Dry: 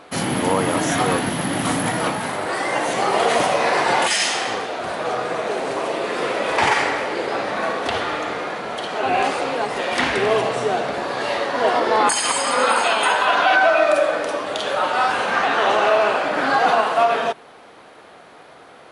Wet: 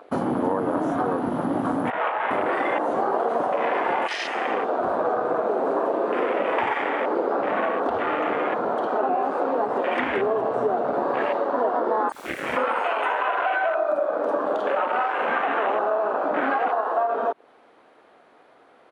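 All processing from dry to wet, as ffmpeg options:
-filter_complex "[0:a]asettb=1/sr,asplit=3[a][b][c];[a]atrim=end=1.904[d];[b]atrim=start=1.9:end=2.31,asetpts=PTS-STARTPTS,afade=t=in:d=0.004:c=qsin,afade=t=out:st=0.406:d=0.004:c=qsin,acrossover=split=540 3900:gain=0.126 1 0.2[e][f][g];[e][f][g]amix=inputs=3:normalize=0,adynamicsmooth=sensitivity=2:basefreq=4.6k[h];[c]atrim=start=2.306[i];[d][h]acrossfade=d=0.004:c1=hsin:c2=qsin[j];[j][i]acrossfade=d=0.004:c1=qsin:c2=hsin,asettb=1/sr,asplit=3[k][l][m];[k]atrim=end=12.124[n];[l]atrim=start=12.12:end=12.57,asetpts=PTS-STARTPTS,afade=t=in:d=0.004:c=qsin,afade=t=out:st=0.446:d=0.004:c=qsin,aeval=exprs='abs(val(0))':c=same,highpass=f=170:p=1,asplit=2[o][p];[p]adelay=27,volume=-2dB[q];[o][q]amix=inputs=2:normalize=0,atrim=end_sample=19845[r];[m]atrim=start=12.566[s];[n][r]acrossfade=d=0.004:c1=hsin:c2=qsin[t];[t][s]acrossfade=d=0.004:c1=qsin:c2=hsin,acompressor=threshold=-26dB:ratio=12,afwtdn=0.0282,firequalizer=gain_entry='entry(170,0);entry(240,8);entry(5300,-2)':delay=0.05:min_phase=1"

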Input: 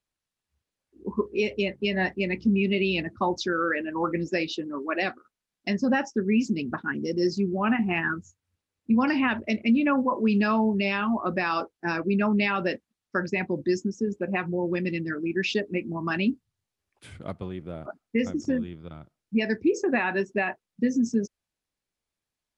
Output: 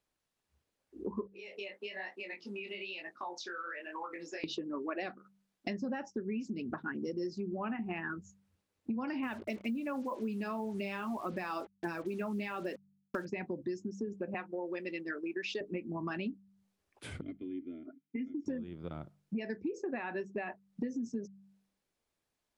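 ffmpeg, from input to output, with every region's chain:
-filter_complex "[0:a]asettb=1/sr,asplit=3[a][b][c];[a]atrim=end=1.274[d];[b]atrim=start=1.27:end=4.44,asetpts=PTS-STARTPTS,afade=t=in:d=0.004:c=qsin,afade=t=out:st=3.166:d=0.004:c=qsin,highpass=830,acompressor=threshold=-38dB:ratio=6:attack=3.2:release=140:knee=1:detection=peak,flanger=delay=19:depth=6.7:speed=1.1[e];[c]atrim=start=4.436[f];[d][e]acrossfade=d=0.004:c1=hsin:c2=qsin[g];[g][f]acrossfade=d=0.004:c1=qsin:c2=hsin,asettb=1/sr,asplit=3[h][i][j];[h]atrim=end=9.234[k];[i]atrim=start=9.23:end=13.25,asetpts=PTS-STARTPTS,afade=t=in:d=0.004:c=qsin,afade=t=out:st=4.016:d=0.004:c=qsin,aphaser=in_gain=1:out_gain=1:delay=3.3:decay=0.28:speed=1.9:type=triangular,acrusher=bits=6:mix=0:aa=0.5[l];[j]atrim=start=13.246[m];[k][l]acrossfade=d=0.004:c1=hsin:c2=qsin[n];[n][m]acrossfade=d=0.004:c1=qsin:c2=hsin,asettb=1/sr,asplit=3[o][p][q];[o]atrim=end=14.344[r];[p]atrim=start=14.34:end=15.61,asetpts=PTS-STARTPTS,afade=t=in:d=0.004:c=qsin,afade=t=out:st=1.266:d=0.004:c=qsin,highpass=440,agate=range=-33dB:threshold=-37dB:ratio=3:release=100:detection=peak[s];[q]atrim=start=15.606[t];[r][s]acrossfade=d=0.004:c1=hsin:c2=qsin[u];[u][t]acrossfade=d=0.004:c1=qsin:c2=hsin,asettb=1/sr,asplit=3[v][w][x];[v]atrim=end=17.214[y];[w]atrim=start=17.21:end=18.46,asetpts=PTS-STARTPTS,afade=t=in:d=0.004:c=qsin,afade=t=out:st=1.246:d=0.004:c=qsin,asplit=3[z][aa][ab];[z]bandpass=f=270:t=q:w=8,volume=0dB[ac];[aa]bandpass=f=2.29k:t=q:w=8,volume=-6dB[ad];[ab]bandpass=f=3.01k:t=q:w=8,volume=-9dB[ae];[ac][ad][ae]amix=inputs=3:normalize=0,equalizer=f=6k:w=0.34:g=-6,aecho=1:1:2.9:0.64,atrim=end_sample=55125[af];[x]atrim=start=18.456[ag];[y][af]acrossfade=d=0.004:c1=hsin:c2=qsin[ah];[ah][ag]acrossfade=d=0.004:c1=qsin:c2=hsin,equalizer=f=470:w=0.42:g=5.5,bandreject=f=48.83:t=h:w=4,bandreject=f=97.66:t=h:w=4,bandreject=f=146.49:t=h:w=4,bandreject=f=195.32:t=h:w=4,acompressor=threshold=-36dB:ratio=6"

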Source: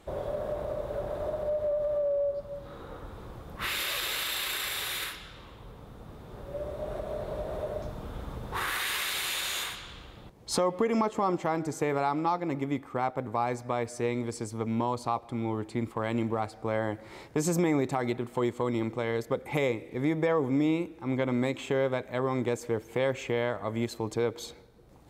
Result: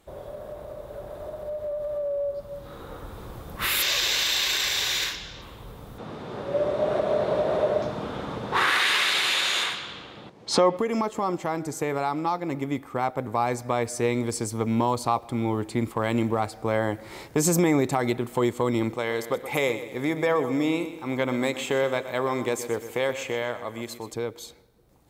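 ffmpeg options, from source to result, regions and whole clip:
-filter_complex "[0:a]asettb=1/sr,asplit=3[a][b][c];[a]atrim=end=3.824[d];[b]atrim=start=3.82:end=5.42,asetpts=PTS-STARTPTS,afade=t=in:d=0.004:c=qsin,afade=t=out:st=1.596:d=0.004:c=qsin,highshelf=f=7.9k:t=q:w=3:g=-10,bandreject=f=1.3k:w=8[e];[c]atrim=start=5.416[f];[d][e]acrossfade=d=0.004:c1=hsin:c2=qsin[g];[g][f]acrossfade=d=0.004:c1=qsin:c2=hsin,asettb=1/sr,asplit=3[h][i][j];[h]atrim=end=5.984[k];[i]atrim=start=5.98:end=10.77,asetpts=PTS-STARTPTS,afade=t=in:d=0.004:c=qsin,afade=t=out:st=4.786:d=0.004:c=qsin,highpass=170,lowpass=4.5k,acontrast=78[l];[j]atrim=start=10.766[m];[k][l]acrossfade=d=0.004:c1=hsin:c2=qsin[n];[n][m]acrossfade=d=0.004:c1=qsin:c2=hsin,asettb=1/sr,asplit=3[o][p][q];[o]atrim=end=18.944[r];[p]atrim=start=18.94:end=24.13,asetpts=PTS-STARTPTS,afade=t=in:d=0.004:c=qsin,afade=t=out:st=5.186:d=0.004:c=qsin,lowshelf=f=270:g=-10,aecho=1:1:125|250|375|500:0.237|0.104|0.0459|0.0202,atrim=end_sample=228879[s];[q]atrim=start=24.126[t];[r][s]acrossfade=d=0.004:c1=hsin:c2=qsin[u];[u][t]acrossfade=d=0.004:c1=qsin:c2=hsin,aemphasis=mode=production:type=50fm,dynaudnorm=f=680:g=7:m=12dB,highshelf=f=7.5k:g=-8,volume=-5dB"

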